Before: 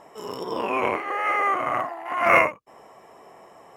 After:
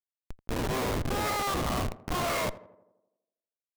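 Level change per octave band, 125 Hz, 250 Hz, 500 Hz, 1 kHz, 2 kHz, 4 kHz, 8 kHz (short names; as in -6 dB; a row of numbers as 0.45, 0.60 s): +10.5 dB, 0.0 dB, -7.0 dB, -9.5 dB, -12.0 dB, +3.5 dB, n/a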